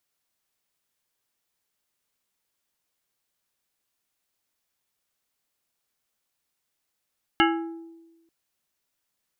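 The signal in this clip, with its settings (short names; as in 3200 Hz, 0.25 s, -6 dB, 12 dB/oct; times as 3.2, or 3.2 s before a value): glass hit plate, lowest mode 331 Hz, modes 7, decay 1.19 s, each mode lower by 1 dB, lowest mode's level -18.5 dB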